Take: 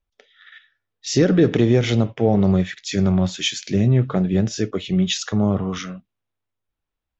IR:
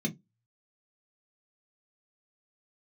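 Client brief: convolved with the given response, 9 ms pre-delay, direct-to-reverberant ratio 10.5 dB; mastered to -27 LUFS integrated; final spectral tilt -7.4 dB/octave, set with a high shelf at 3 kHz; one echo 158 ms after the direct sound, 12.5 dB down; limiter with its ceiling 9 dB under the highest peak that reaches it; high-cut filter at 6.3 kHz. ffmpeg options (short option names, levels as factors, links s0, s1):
-filter_complex "[0:a]lowpass=6300,highshelf=f=3000:g=-4,alimiter=limit=0.2:level=0:latency=1,aecho=1:1:158:0.237,asplit=2[s0][s1];[1:a]atrim=start_sample=2205,adelay=9[s2];[s1][s2]afir=irnorm=-1:irlink=0,volume=0.2[s3];[s0][s3]amix=inputs=2:normalize=0,volume=0.376"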